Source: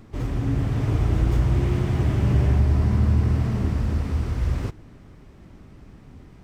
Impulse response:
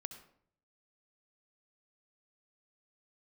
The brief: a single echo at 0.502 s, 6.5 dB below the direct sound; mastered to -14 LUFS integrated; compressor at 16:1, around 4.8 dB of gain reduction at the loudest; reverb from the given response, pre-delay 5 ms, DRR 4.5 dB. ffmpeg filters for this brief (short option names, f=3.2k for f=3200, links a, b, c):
-filter_complex "[0:a]acompressor=threshold=-19dB:ratio=16,aecho=1:1:502:0.473,asplit=2[a][b];[1:a]atrim=start_sample=2205,adelay=5[c];[b][c]afir=irnorm=-1:irlink=0,volume=-1dB[d];[a][d]amix=inputs=2:normalize=0,volume=12.5dB"